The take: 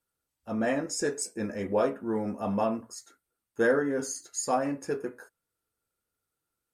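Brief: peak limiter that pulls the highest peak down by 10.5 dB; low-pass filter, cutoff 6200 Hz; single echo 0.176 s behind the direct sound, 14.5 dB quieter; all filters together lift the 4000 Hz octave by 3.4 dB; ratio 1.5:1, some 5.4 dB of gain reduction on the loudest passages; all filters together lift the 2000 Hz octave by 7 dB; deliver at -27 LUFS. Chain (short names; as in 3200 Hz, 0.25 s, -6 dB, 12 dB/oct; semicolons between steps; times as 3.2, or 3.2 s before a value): LPF 6200 Hz; bell 2000 Hz +8.5 dB; bell 4000 Hz +5 dB; compressor 1.5:1, threshold -32 dBFS; limiter -26 dBFS; echo 0.176 s -14.5 dB; gain +9 dB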